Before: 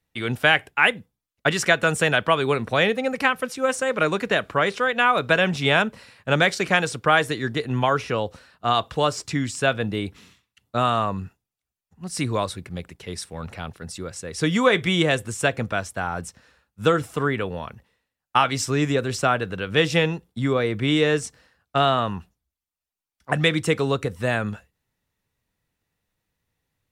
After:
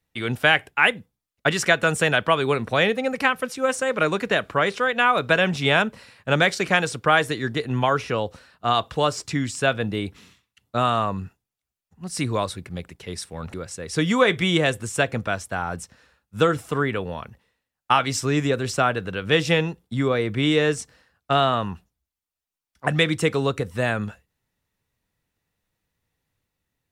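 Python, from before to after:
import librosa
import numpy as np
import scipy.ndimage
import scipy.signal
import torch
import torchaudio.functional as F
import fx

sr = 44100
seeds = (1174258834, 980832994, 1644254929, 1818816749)

y = fx.edit(x, sr, fx.cut(start_s=13.54, length_s=0.45), tone=tone)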